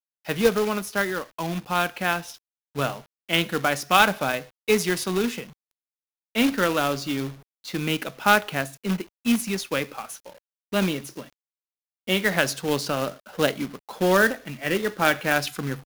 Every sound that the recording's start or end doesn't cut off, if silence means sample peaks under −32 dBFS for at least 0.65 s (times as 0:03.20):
0:06.35–0:11.22